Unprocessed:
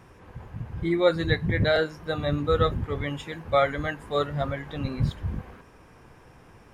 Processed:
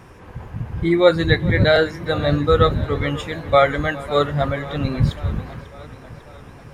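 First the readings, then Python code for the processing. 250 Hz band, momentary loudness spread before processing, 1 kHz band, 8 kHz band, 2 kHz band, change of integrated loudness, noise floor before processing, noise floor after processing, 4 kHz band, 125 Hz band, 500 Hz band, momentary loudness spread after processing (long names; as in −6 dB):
+7.5 dB, 13 LU, +7.5 dB, can't be measured, +7.5 dB, +7.5 dB, −53 dBFS, −42 dBFS, +7.5 dB, +7.5 dB, +7.5 dB, 18 LU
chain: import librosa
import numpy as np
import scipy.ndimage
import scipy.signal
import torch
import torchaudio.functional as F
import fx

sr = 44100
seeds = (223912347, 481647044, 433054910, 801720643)

y = x + 10.0 ** (-21.0 / 20.0) * np.pad(x, (int(411 * sr / 1000.0), 0))[:len(x)]
y = fx.echo_warbled(y, sr, ms=546, feedback_pct=62, rate_hz=2.8, cents=107, wet_db=-18.5)
y = y * librosa.db_to_amplitude(7.5)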